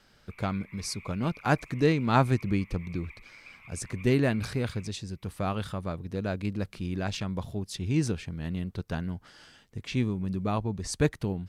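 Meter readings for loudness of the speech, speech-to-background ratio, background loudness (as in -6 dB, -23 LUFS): -30.5 LUFS, 19.5 dB, -50.0 LUFS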